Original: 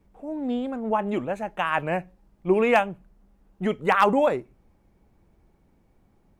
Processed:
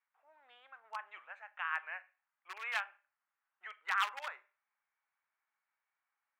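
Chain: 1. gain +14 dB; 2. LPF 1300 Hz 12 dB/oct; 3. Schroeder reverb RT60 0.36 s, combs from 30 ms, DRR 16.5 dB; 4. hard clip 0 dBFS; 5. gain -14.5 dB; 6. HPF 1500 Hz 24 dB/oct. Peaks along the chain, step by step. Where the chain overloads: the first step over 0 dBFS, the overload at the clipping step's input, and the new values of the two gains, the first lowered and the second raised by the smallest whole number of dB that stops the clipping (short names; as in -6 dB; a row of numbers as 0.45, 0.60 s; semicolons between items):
+5.0, +5.0, +5.5, 0.0, -14.5, -19.0 dBFS; step 1, 5.5 dB; step 1 +8 dB, step 5 -8.5 dB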